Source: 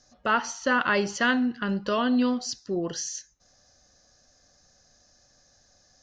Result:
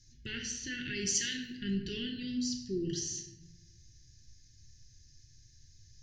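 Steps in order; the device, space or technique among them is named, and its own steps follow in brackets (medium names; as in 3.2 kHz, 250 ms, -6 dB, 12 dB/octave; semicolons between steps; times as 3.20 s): inverse Chebyshev band-stop 550–1300 Hz, stop band 40 dB; car stereo with a boomy subwoofer (resonant low shelf 150 Hz +9.5 dB, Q 3; peak limiter -25.5 dBFS, peak gain reduction 7.5 dB); 1.06–1.55 s: tone controls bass -13 dB, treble +13 dB; simulated room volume 340 m³, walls mixed, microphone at 0.93 m; trim -4 dB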